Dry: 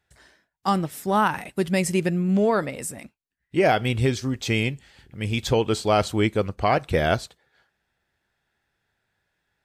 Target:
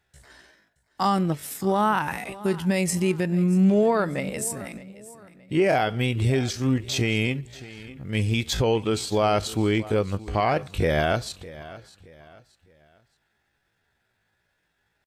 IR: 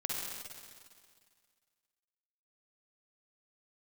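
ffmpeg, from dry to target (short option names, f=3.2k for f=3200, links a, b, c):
-af "alimiter=limit=-15.5dB:level=0:latency=1:release=109,aecho=1:1:394|788|1182:0.126|0.0441|0.0154,atempo=0.64,volume=3dB"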